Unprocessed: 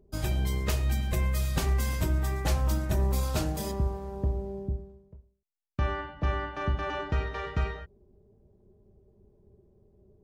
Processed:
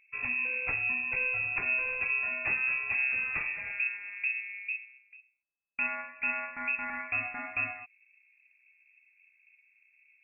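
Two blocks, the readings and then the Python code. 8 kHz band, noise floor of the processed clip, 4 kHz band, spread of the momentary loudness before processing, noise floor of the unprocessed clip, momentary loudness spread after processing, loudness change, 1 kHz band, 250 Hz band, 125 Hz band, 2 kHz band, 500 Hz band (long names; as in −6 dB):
below −40 dB, −69 dBFS, below −20 dB, 7 LU, −64 dBFS, 7 LU, 0.0 dB, −5.0 dB, −15.0 dB, −26.5 dB, +11.5 dB, −12.5 dB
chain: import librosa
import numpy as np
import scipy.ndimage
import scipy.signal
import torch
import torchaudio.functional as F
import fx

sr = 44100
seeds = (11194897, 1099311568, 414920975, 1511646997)

y = fx.freq_invert(x, sr, carrier_hz=2600)
y = fx.high_shelf(y, sr, hz=2000.0, db=-9.5)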